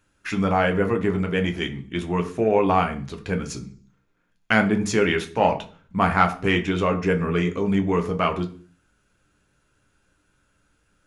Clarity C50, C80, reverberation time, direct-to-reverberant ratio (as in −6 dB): 14.5 dB, 19.0 dB, 0.45 s, 4.5 dB